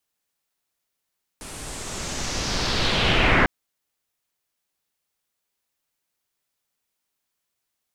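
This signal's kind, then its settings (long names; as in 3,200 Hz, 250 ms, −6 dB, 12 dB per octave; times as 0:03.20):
filter sweep on noise pink, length 2.05 s lowpass, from 9,600 Hz, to 1,700 Hz, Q 2.5, linear, gain ramp +22.5 dB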